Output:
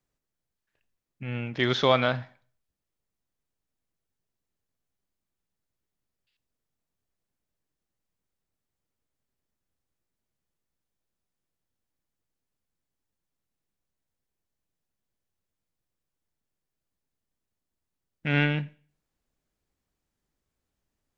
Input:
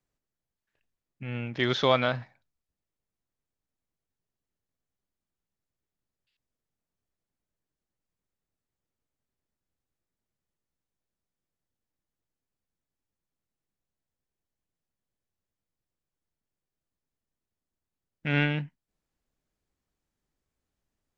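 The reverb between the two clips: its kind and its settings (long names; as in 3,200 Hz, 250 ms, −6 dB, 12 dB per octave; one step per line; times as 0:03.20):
four-comb reverb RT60 0.46 s, combs from 32 ms, DRR 18.5 dB
level +1.5 dB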